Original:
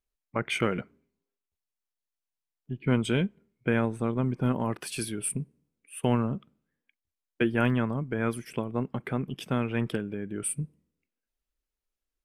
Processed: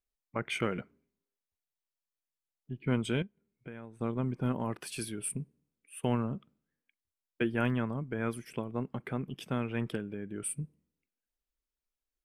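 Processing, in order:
0:03.22–0:04.01: downward compressor 2.5 to 1, threshold −45 dBFS, peak gain reduction 16 dB
level −5 dB

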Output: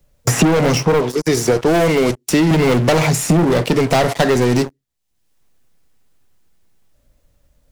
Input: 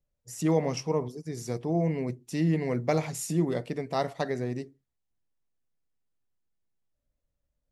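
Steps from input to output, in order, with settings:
0:01.01–0:02.51: bass and treble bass −14 dB, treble −1 dB
leveller curve on the samples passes 5
multiband upward and downward compressor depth 100%
level +3 dB

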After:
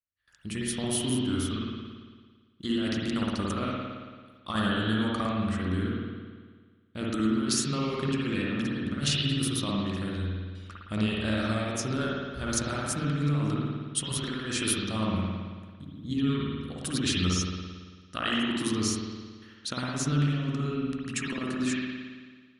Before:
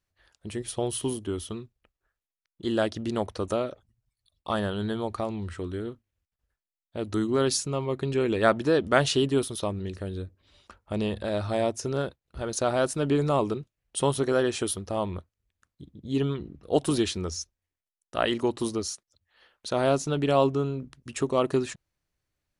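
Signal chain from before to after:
low-shelf EQ 110 Hz −7 dB
noise gate with hold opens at −50 dBFS
compressor whose output falls as the input rises −28 dBFS, ratio −0.5
flat-topped bell 580 Hz −12 dB
spring reverb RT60 1.6 s, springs 55 ms, chirp 60 ms, DRR −4.5 dB

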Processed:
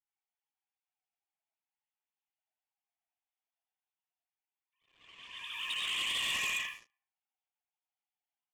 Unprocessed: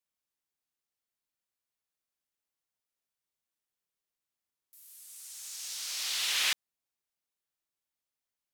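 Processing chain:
three sine waves on the formant tracks
downward compressor 4 to 1, threshold −44 dBFS, peak gain reduction 17 dB
ambience of single reflections 16 ms −8.5 dB, 74 ms −15.5 dB
comb and all-pass reverb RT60 0.58 s, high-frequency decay 0.7×, pre-delay 60 ms, DRR −1 dB
leveller curve on the samples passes 3
low-pass that shuts in the quiet parts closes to 2,700 Hz, open at −36 dBFS
parametric band 1,500 Hz −11.5 dB 1.4 octaves
level +3.5 dB

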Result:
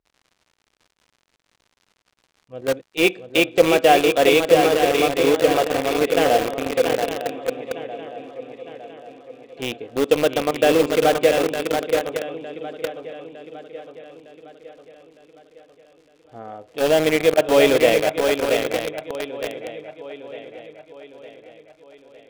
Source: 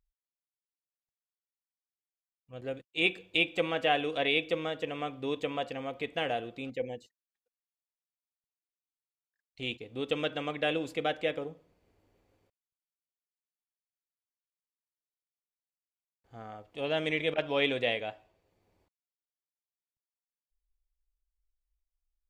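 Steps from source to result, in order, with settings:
high-pass filter 75 Hz 6 dB per octave
parametric band 470 Hz +9.5 dB 2.5 octaves
on a send: feedback echo with a long and a short gap by turns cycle 908 ms, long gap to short 3 to 1, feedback 51%, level −6 dB
on the sum: surface crackle 140 per second −44 dBFS
high-frequency loss of the air 57 metres
in parallel at −4 dB: bit reduction 4 bits
on the sum: level +2 dB

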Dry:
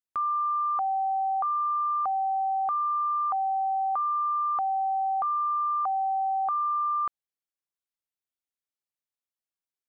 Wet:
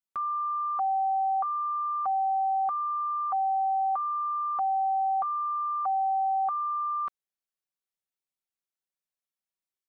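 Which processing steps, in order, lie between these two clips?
comb filter 5.3 ms
level −3.5 dB

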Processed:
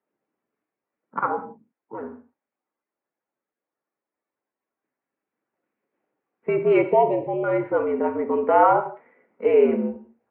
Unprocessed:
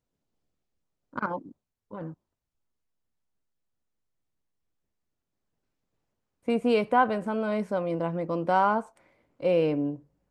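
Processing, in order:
spectral magnitudes quantised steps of 15 dB
0:06.82–0:07.44: Butterworth band-reject 1,500 Hz, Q 0.88
reverb whose tail is shaped and stops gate 210 ms falling, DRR 6.5 dB
single-sideband voice off tune −72 Hz 330–2,400 Hz
level +7 dB

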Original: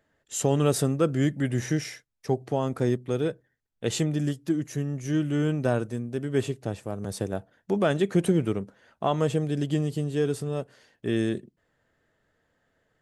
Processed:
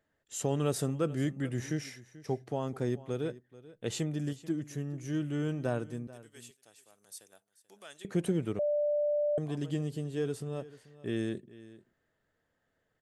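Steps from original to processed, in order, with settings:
0:06.07–0:08.05: first difference
single-tap delay 436 ms −18.5 dB
0:08.59–0:09.38: beep over 590 Hz −18.5 dBFS
level −7.5 dB

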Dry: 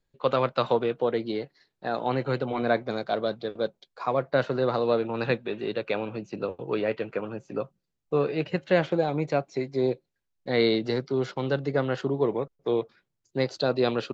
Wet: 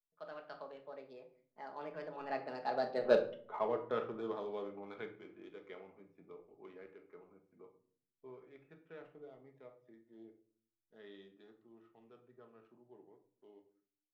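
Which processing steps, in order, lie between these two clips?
adaptive Wiener filter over 9 samples
source passing by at 0:03.16, 49 m/s, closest 5.2 metres
parametric band 77 Hz −14.5 dB 2.7 octaves
soft clipping −23.5 dBFS, distortion −16 dB
high-frequency loss of the air 120 metres
rectangular room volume 550 cubic metres, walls furnished, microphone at 1.4 metres
level +5 dB

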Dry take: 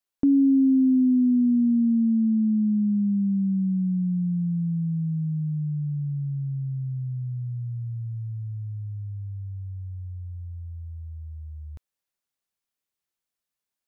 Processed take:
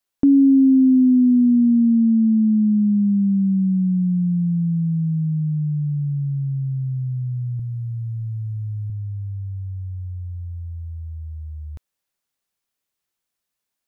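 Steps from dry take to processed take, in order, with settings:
0:07.59–0:08.90: comb filter 3 ms, depth 94%
level +5.5 dB

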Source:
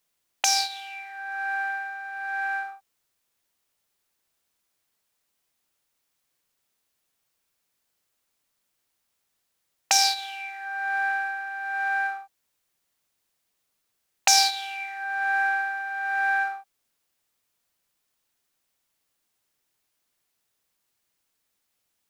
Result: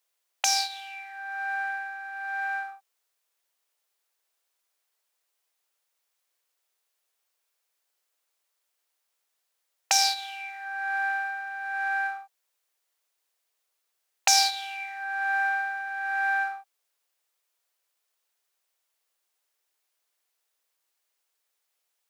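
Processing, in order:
high-pass filter 410 Hz 24 dB per octave
level −2 dB

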